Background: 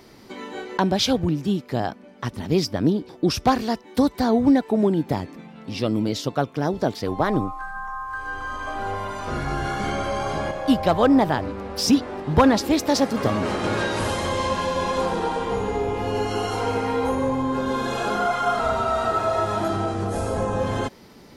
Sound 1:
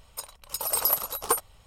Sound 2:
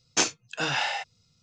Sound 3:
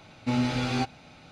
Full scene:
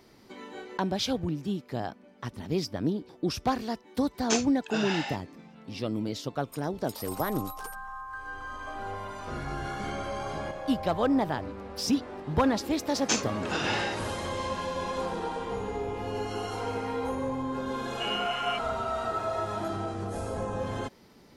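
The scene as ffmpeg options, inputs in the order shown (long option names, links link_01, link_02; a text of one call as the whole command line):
ffmpeg -i bed.wav -i cue0.wav -i cue1.wav -i cue2.wav -filter_complex "[2:a]asplit=2[link_01][link_02];[0:a]volume=-8.5dB[link_03];[1:a]acompressor=threshold=-28dB:ratio=6:attack=3.2:release=140:knee=1:detection=peak[link_04];[3:a]lowpass=frequency=2600:width_type=q:width=0.5098,lowpass=frequency=2600:width_type=q:width=0.6013,lowpass=frequency=2600:width_type=q:width=0.9,lowpass=frequency=2600:width_type=q:width=2.563,afreqshift=-3100[link_05];[link_01]atrim=end=1.42,asetpts=PTS-STARTPTS,volume=-5.5dB,afade=type=in:duration=0.004:curve=hsin,afade=type=out:start_time=1.416:duration=0.004:curve=hsin,adelay=182133S[link_06];[link_04]atrim=end=1.66,asetpts=PTS-STARTPTS,volume=-10dB,afade=type=in:duration=0.004:curve=hsin,afade=type=out:start_time=1.656:duration=0.004:curve=hsin,adelay=6350[link_07];[link_02]atrim=end=1.42,asetpts=PTS-STARTPTS,volume=-4dB,afade=type=in:duration=0.004:curve=hsin,afade=type=out:start_time=1.416:duration=0.004:curve=hsin,adelay=12920[link_08];[link_05]atrim=end=1.31,asetpts=PTS-STARTPTS,volume=-9.5dB,afade=type=in:duration=0.004:curve=hsin,afade=type=out:start_time=1.306:duration=0.004:curve=hsin,adelay=17730[link_09];[link_03][link_06][link_07][link_08][link_09]amix=inputs=5:normalize=0" out.wav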